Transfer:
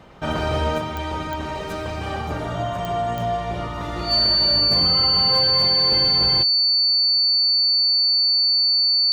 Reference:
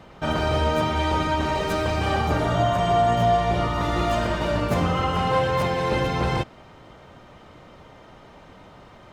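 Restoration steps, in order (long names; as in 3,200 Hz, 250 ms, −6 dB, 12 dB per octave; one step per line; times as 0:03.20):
clipped peaks rebuilt −11 dBFS
click removal
notch filter 4,500 Hz, Q 30
level correction +4.5 dB, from 0:00.78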